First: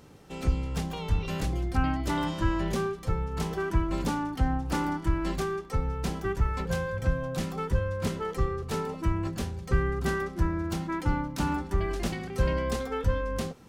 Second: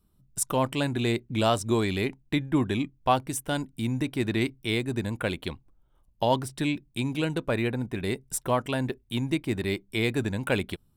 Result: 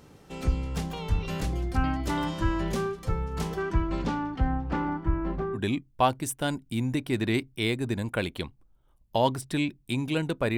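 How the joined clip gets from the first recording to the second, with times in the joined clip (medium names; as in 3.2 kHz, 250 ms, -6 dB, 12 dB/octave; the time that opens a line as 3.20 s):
first
3.59–5.59 s: low-pass 6.7 kHz -> 1 kHz
5.56 s: go over to second from 2.63 s, crossfade 0.06 s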